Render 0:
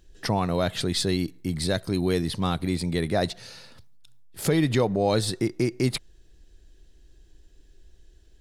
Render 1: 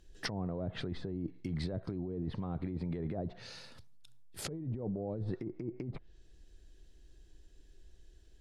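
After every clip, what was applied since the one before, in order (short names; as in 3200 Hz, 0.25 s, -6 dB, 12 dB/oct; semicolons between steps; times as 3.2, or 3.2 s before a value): treble ducked by the level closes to 460 Hz, closed at -19.5 dBFS; negative-ratio compressor -29 dBFS, ratio -1; gain -8 dB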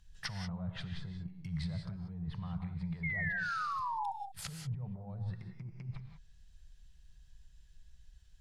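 EQ curve 170 Hz 0 dB, 290 Hz -29 dB, 960 Hz -2 dB; painted sound fall, 3.03–4.12, 770–2200 Hz -37 dBFS; non-linear reverb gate 0.21 s rising, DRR 6 dB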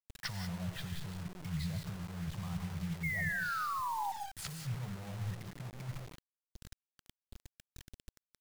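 bit-crush 8-bit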